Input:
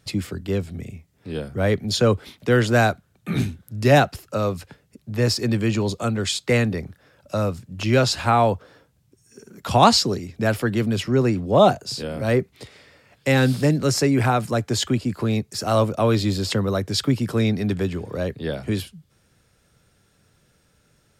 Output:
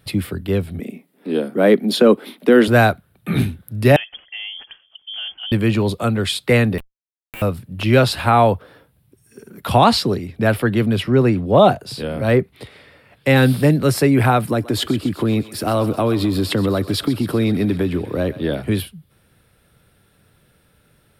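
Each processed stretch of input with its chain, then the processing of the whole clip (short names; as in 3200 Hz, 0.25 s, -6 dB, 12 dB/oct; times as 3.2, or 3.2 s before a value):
0.8–2.68 steep high-pass 220 Hz + low shelf 410 Hz +11.5 dB
3.96–5.52 compressor 3:1, threshold -35 dBFS + air absorption 260 m + inverted band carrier 3300 Hz
6.78–7.42 inverted band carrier 2900 Hz + Schmitt trigger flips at -23 dBFS + compressor 4:1, threshold -39 dBFS
9.78–13.36 de-esser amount 20% + high shelf 11000 Hz -8.5 dB
14.46–18.62 bell 300 Hz +8 dB 0.56 oct + compressor, threshold -18 dBFS + thinning echo 0.129 s, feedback 70%, high-pass 670 Hz, level -14 dB
whole clip: EQ curve 3700 Hz 0 dB, 6700 Hz -14 dB, 9900 Hz +4 dB; maximiser +5.5 dB; gain -1 dB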